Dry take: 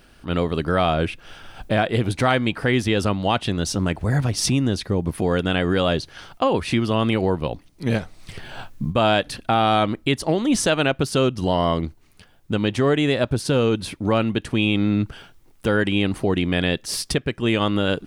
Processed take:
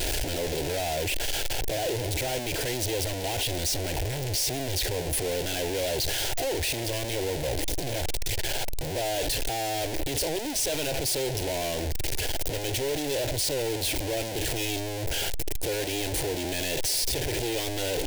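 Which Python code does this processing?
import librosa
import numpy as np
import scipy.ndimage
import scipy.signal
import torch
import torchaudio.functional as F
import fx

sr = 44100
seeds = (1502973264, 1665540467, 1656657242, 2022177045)

y = np.sign(x) * np.sqrt(np.mean(np.square(x)))
y = fx.fixed_phaser(y, sr, hz=500.0, stages=4)
y = F.gain(torch.from_numpy(y), -4.0).numpy()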